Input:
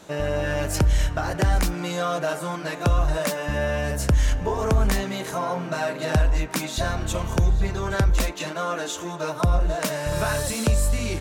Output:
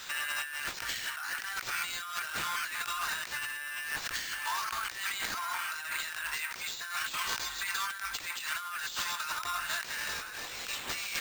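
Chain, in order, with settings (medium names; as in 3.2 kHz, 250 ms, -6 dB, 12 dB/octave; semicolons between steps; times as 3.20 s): inverse Chebyshev high-pass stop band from 510 Hz, stop band 50 dB; band-stop 7.8 kHz, Q 25; compressor with a negative ratio -41 dBFS, ratio -1; careless resampling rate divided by 4×, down none, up hold; trim +4 dB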